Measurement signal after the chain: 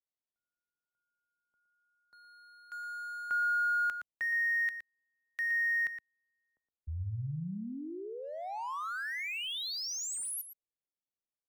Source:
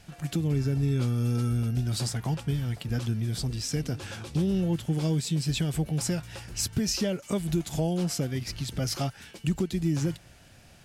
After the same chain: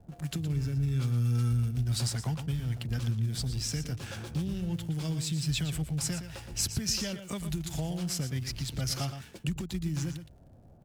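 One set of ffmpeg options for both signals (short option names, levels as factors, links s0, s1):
-filter_complex "[0:a]acrossover=split=150|860[s0][s1][s2];[s1]acompressor=threshold=0.00891:ratio=6[s3];[s2]aeval=exprs='sgn(val(0))*max(abs(val(0))-0.00251,0)':c=same[s4];[s0][s3][s4]amix=inputs=3:normalize=0,asplit=2[s5][s6];[s6]adelay=116.6,volume=0.355,highshelf=f=4000:g=-2.62[s7];[s5][s7]amix=inputs=2:normalize=0"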